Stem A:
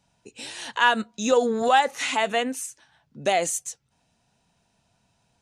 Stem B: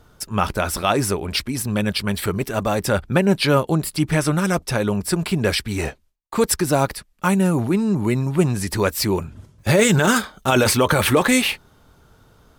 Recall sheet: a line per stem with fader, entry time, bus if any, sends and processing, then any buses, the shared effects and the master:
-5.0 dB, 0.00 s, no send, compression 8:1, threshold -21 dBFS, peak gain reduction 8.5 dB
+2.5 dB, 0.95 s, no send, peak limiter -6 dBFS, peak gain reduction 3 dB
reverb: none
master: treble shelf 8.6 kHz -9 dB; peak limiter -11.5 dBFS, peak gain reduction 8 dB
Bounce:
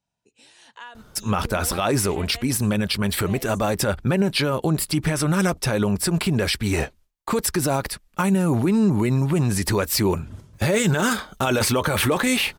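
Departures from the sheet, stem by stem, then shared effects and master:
stem A -5.0 dB -> -15.0 dB; master: missing treble shelf 8.6 kHz -9 dB

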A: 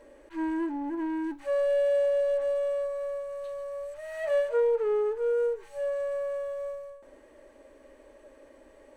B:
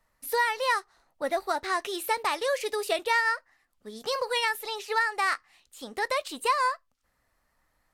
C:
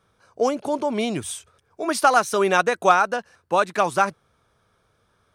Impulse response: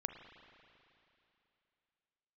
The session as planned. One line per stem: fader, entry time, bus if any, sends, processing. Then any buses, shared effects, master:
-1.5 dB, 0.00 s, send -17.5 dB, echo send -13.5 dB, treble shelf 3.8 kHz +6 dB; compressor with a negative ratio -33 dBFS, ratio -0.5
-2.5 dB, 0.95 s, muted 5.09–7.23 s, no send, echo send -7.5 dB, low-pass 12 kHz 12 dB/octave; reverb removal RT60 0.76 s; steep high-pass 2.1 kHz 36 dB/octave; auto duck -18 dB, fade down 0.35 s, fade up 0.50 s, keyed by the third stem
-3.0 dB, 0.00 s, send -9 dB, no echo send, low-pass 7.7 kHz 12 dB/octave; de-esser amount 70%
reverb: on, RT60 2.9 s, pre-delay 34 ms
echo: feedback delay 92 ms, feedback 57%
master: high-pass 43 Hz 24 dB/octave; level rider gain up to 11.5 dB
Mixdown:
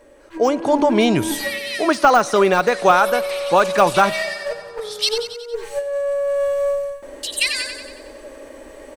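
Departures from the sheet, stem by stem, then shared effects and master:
stem A: send off; stem B -2.5 dB -> +4.5 dB; master: missing high-pass 43 Hz 24 dB/octave

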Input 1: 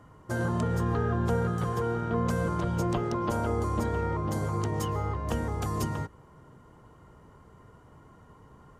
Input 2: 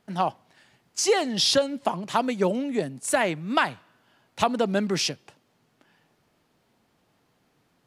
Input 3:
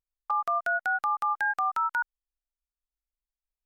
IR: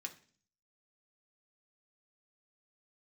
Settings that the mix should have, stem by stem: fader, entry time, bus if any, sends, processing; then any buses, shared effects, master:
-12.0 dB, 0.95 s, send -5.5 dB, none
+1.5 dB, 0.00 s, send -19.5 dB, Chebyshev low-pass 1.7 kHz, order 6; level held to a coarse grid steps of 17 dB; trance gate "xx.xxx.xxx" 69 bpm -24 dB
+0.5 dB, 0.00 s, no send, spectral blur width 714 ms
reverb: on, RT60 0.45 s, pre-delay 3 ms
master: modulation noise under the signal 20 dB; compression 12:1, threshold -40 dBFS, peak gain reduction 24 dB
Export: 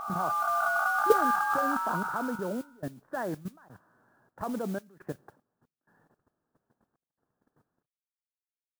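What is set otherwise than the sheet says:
stem 1: muted; stem 3 +0.5 dB -> +8.0 dB; master: missing compression 12:1, threshold -40 dBFS, peak gain reduction 24 dB

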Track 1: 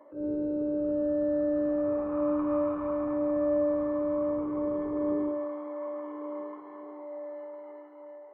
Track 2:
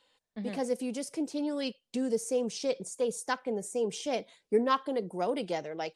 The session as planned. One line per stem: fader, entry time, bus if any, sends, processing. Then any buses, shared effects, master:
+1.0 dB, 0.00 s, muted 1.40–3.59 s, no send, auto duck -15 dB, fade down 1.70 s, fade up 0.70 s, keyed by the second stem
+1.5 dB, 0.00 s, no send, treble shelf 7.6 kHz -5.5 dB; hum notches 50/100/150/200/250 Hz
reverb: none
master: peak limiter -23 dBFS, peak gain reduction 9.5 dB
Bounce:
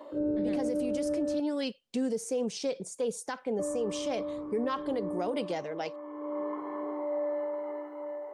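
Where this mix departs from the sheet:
stem 1 +1.0 dB -> +8.0 dB; stem 2: missing hum notches 50/100/150/200/250 Hz

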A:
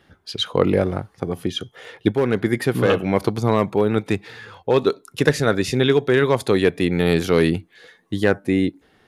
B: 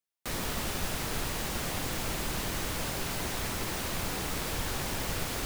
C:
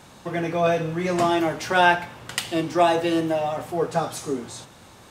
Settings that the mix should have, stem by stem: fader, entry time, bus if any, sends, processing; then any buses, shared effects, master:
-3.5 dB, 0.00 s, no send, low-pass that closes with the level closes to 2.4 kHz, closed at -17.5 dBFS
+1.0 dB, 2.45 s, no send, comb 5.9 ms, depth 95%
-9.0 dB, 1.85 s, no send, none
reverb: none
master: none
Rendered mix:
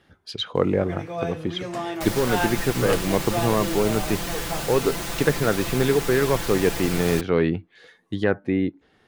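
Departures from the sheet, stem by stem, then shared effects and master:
stem B: entry 2.45 s -> 1.75 s; stem C: entry 1.85 s -> 0.55 s

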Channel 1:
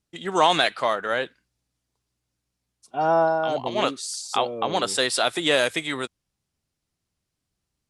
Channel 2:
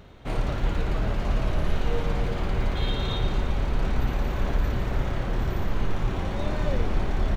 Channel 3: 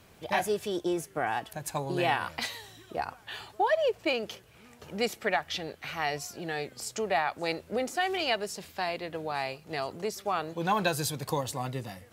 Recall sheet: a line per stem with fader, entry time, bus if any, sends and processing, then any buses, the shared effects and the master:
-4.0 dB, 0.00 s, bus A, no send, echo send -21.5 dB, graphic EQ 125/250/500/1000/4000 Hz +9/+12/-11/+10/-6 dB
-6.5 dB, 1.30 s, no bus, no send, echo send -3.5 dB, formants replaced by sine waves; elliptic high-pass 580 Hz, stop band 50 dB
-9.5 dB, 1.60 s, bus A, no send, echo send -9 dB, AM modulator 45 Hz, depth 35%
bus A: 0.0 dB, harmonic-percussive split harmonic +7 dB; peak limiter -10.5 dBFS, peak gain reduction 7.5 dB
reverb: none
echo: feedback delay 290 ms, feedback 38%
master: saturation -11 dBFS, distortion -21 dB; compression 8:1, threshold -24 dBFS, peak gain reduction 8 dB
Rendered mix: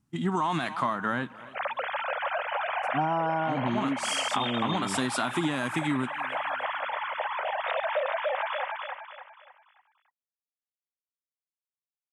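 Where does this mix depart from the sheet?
stem 3: muted; master: missing saturation -11 dBFS, distortion -21 dB

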